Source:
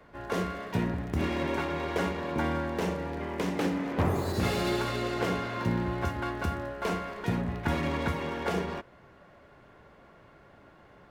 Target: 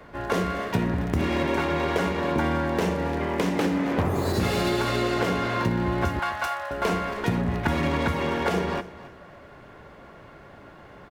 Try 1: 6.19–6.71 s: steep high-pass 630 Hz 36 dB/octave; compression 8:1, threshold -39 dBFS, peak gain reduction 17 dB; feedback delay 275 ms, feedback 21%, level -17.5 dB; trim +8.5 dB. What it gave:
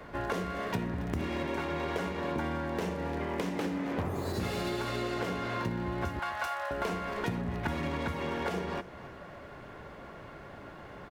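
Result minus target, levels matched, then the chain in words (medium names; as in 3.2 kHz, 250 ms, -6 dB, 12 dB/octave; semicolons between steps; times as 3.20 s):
compression: peak gain reduction +9 dB
6.19–6.71 s: steep high-pass 630 Hz 36 dB/octave; compression 8:1, threshold -28.5 dBFS, peak gain reduction 7.5 dB; feedback delay 275 ms, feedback 21%, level -17.5 dB; trim +8.5 dB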